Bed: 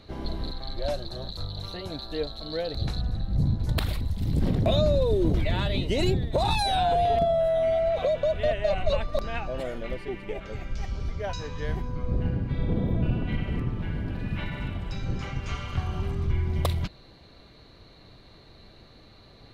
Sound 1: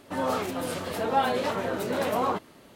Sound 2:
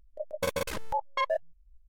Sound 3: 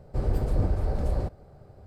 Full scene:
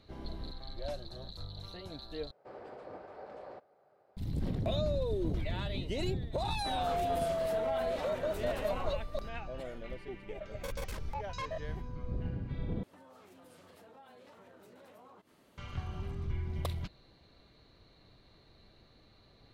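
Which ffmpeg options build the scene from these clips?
ffmpeg -i bed.wav -i cue0.wav -i cue1.wav -i cue2.wav -filter_complex "[1:a]asplit=2[link_01][link_02];[0:a]volume=-10dB[link_03];[3:a]highpass=560,lowpass=2900[link_04];[link_01]alimiter=limit=-23dB:level=0:latency=1:release=37[link_05];[2:a]asoftclip=type=tanh:threshold=-26.5dB[link_06];[link_02]acompressor=threshold=-43dB:ratio=6:attack=3.2:release=140:knee=1:detection=peak[link_07];[link_03]asplit=3[link_08][link_09][link_10];[link_08]atrim=end=2.314[link_11];[link_04]atrim=end=1.86,asetpts=PTS-STARTPTS,volume=-7.5dB[link_12];[link_09]atrim=start=4.166:end=12.834[link_13];[link_07]atrim=end=2.75,asetpts=PTS-STARTPTS,volume=-12dB[link_14];[link_10]atrim=start=15.576[link_15];[link_05]atrim=end=2.75,asetpts=PTS-STARTPTS,volume=-9dB,afade=type=in:duration=0.004:curve=hsin,afade=type=out:start_time=2.746:duration=0.004:curve=hsin,adelay=6540[link_16];[link_06]atrim=end=1.88,asetpts=PTS-STARTPTS,volume=-7.5dB,afade=type=in:duration=0.004:curve=hsin,afade=type=out:start_time=1.876:duration=0.004:curve=hsin,adelay=10210[link_17];[link_11][link_12]acrossfade=duration=0.004:curve1=hsin:curve2=hsin[link_18];[link_18][link_13]acrossfade=duration=0.004:curve1=hsin:curve2=hsin[link_19];[link_19][link_14]acrossfade=duration=0.004:curve1=hsin:curve2=hsin[link_20];[link_20][link_15]acrossfade=duration=0.004:curve1=hsin:curve2=hsin[link_21];[link_21][link_16][link_17]amix=inputs=3:normalize=0" out.wav

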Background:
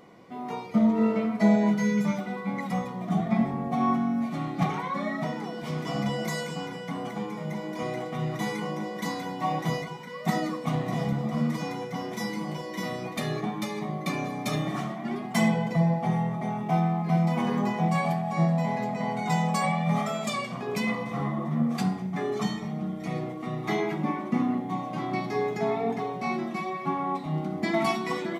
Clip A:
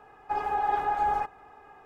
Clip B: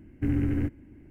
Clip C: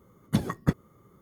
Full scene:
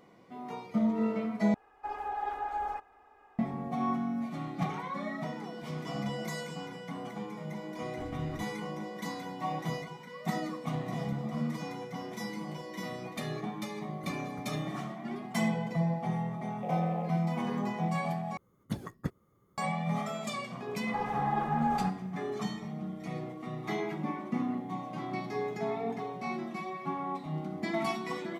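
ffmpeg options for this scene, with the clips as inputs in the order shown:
ffmpeg -i bed.wav -i cue0.wav -i cue1.wav -i cue2.wav -filter_complex "[1:a]asplit=2[link_01][link_02];[2:a]asplit=2[link_03][link_04];[3:a]asplit=2[link_05][link_06];[0:a]volume=-6.5dB[link_07];[link_01]equalizer=frequency=140:width=2.1:gain=-13.5[link_08];[link_05]alimiter=limit=-19.5dB:level=0:latency=1:release=71[link_09];[link_04]afreqshift=440[link_10];[link_07]asplit=3[link_11][link_12][link_13];[link_11]atrim=end=1.544[link_14];[link_08]atrim=end=1.85,asetpts=PTS-STARTPTS,volume=-8dB[link_15];[link_12]atrim=start=3.386:end=18.374[link_16];[link_06]atrim=end=1.21,asetpts=PTS-STARTPTS,volume=-10.5dB[link_17];[link_13]atrim=start=19.576[link_18];[link_03]atrim=end=1.1,asetpts=PTS-STARTPTS,volume=-17dB,afade=type=in:duration=0.004:curve=hsin,afade=type=out:start_time=1.096:duration=0.004:curve=hsin,adelay=7760[link_19];[link_09]atrim=end=1.21,asetpts=PTS-STARTPTS,volume=-17dB,afade=type=in:duration=0.004:curve=hsin,afade=type=out:start_time=1.206:duration=0.004:curve=hsin,adelay=13700[link_20];[link_10]atrim=end=1.1,asetpts=PTS-STARTPTS,volume=-13dB,afade=type=in:duration=0.004:curve=hsin,afade=type=out:start_time=1.096:duration=0.004:curve=hsin,adelay=16400[link_21];[link_02]atrim=end=1.85,asetpts=PTS-STARTPTS,volume=-5dB,afade=type=in:duration=0.004:curve=hsin,afade=type=out:start_time=1.846:duration=0.004:curve=hsin,adelay=20640[link_22];[link_14][link_15]acrossfade=duration=0.004:curve1=hsin:curve2=hsin[link_23];[link_23][link_16]acrossfade=duration=0.004:curve1=hsin:curve2=hsin[link_24];[link_24][link_17]acrossfade=duration=0.004:curve1=hsin:curve2=hsin[link_25];[link_25][link_18]acrossfade=duration=0.004:curve1=hsin:curve2=hsin[link_26];[link_26][link_19][link_20][link_21][link_22]amix=inputs=5:normalize=0" out.wav

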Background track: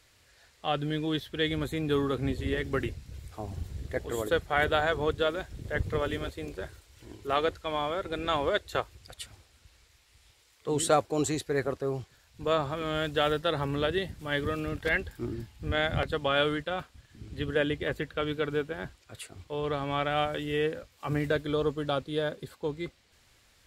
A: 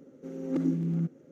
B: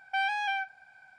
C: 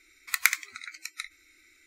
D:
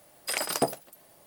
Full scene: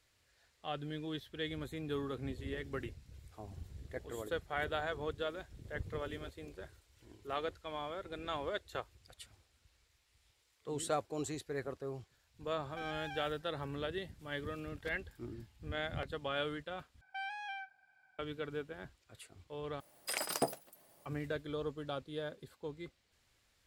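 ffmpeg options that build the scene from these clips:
ffmpeg -i bed.wav -i cue0.wav -i cue1.wav -i cue2.wav -i cue3.wav -filter_complex "[2:a]asplit=2[link_01][link_02];[0:a]volume=-11dB[link_03];[link_01]asoftclip=type=tanh:threshold=-23.5dB[link_04];[link_03]asplit=3[link_05][link_06][link_07];[link_05]atrim=end=17.014[link_08];[link_02]atrim=end=1.18,asetpts=PTS-STARTPTS,volume=-13dB[link_09];[link_06]atrim=start=18.186:end=19.804[link_10];[4:a]atrim=end=1.26,asetpts=PTS-STARTPTS,volume=-7.5dB[link_11];[link_07]atrim=start=21.056[link_12];[link_04]atrim=end=1.18,asetpts=PTS-STARTPTS,volume=-14.5dB,afade=type=in:duration=0.004:curve=hsin,afade=type=out:start_time=1.176:duration=0.004:curve=hsin,adelay=12630[link_13];[link_08][link_09]acrossfade=duration=0.004:curve1=hsin:curve2=hsin[link_14];[link_14][link_10]acrossfade=duration=0.004:curve1=hsin:curve2=hsin[link_15];[link_15][link_11]acrossfade=duration=0.004:curve1=hsin:curve2=hsin[link_16];[link_16][link_12]acrossfade=duration=0.004:curve1=hsin:curve2=hsin[link_17];[link_17][link_13]amix=inputs=2:normalize=0" out.wav

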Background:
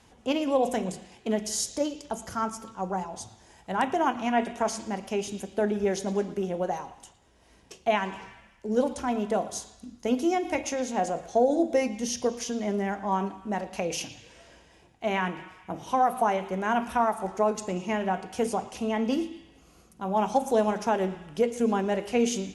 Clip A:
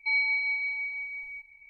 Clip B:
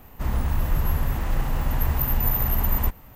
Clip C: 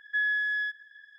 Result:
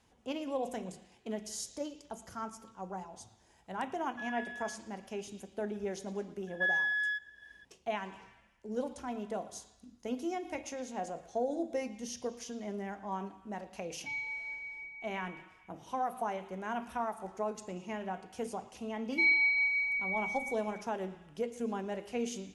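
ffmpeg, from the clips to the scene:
ffmpeg -i bed.wav -i cue0.wav -i cue1.wav -i cue2.wav -filter_complex "[3:a]asplit=2[link_01][link_02];[1:a]asplit=2[link_03][link_04];[0:a]volume=-11dB[link_05];[link_03]lowpass=1800[link_06];[link_04]aecho=1:1:3:0.52[link_07];[link_01]atrim=end=1.18,asetpts=PTS-STARTPTS,volume=-16dB,afade=type=in:duration=0.004:curve=hsin,afade=type=out:start_time=1.176:duration=0.004:curve=hsin,adelay=4040[link_08];[link_02]atrim=end=1.18,asetpts=PTS-STARTPTS,volume=-3dB,afade=type=in:duration=0.004:curve=hsin,afade=type=out:start_time=1.176:duration=0.004:curve=hsin,adelay=6470[link_09];[link_06]atrim=end=1.69,asetpts=PTS-STARTPTS,volume=-7dB,afade=type=in:duration=0.004:curve=hsin,afade=type=out:start_time=1.686:duration=0.004:curve=hsin,adelay=14000[link_10];[link_07]atrim=end=1.69,asetpts=PTS-STARTPTS,volume=-1.5dB,afade=type=in:duration=0.004:curve=hsin,afade=type=out:start_time=1.686:duration=0.004:curve=hsin,adelay=19120[link_11];[link_05][link_08][link_09][link_10][link_11]amix=inputs=5:normalize=0" out.wav

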